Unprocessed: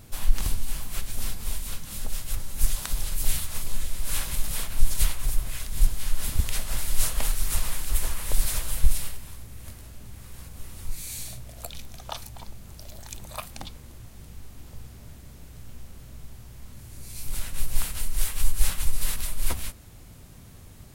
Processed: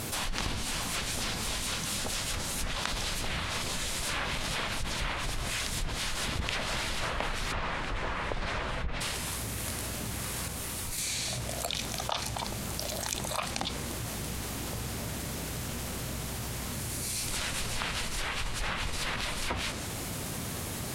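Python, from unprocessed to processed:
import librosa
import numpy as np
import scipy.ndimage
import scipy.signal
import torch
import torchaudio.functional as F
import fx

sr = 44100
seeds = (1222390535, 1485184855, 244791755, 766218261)

y = fx.lowpass(x, sr, hz=2000.0, slope=12, at=(7.51, 9.0), fade=0.02)
y = fx.edit(y, sr, fx.clip_gain(start_s=10.48, length_s=0.5, db=-6.0), tone=tone)
y = fx.highpass(y, sr, hz=260.0, slope=6)
y = fx.env_lowpass_down(y, sr, base_hz=2300.0, full_db=-28.0)
y = fx.env_flatten(y, sr, amount_pct=70)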